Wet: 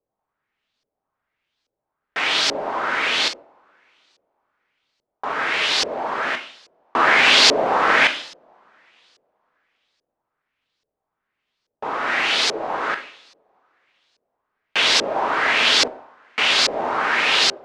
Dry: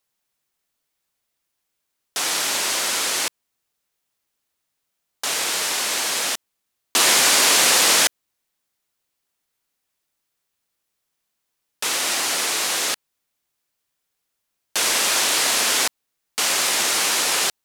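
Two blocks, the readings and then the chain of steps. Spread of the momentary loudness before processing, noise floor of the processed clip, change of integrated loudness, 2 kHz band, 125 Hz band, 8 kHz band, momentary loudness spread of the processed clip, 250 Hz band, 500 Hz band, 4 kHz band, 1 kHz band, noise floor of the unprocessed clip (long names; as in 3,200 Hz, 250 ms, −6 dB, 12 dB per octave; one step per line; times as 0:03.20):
12 LU, −83 dBFS, 0.0 dB, +5.0 dB, +3.0 dB, −11.5 dB, 14 LU, +3.5 dB, +5.0 dB, +1.5 dB, +5.5 dB, −78 dBFS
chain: running median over 3 samples
coupled-rooms reverb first 0.56 s, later 3.3 s, from −27 dB, DRR 6.5 dB
auto-filter low-pass saw up 1.2 Hz 480–5,100 Hz
level +1.5 dB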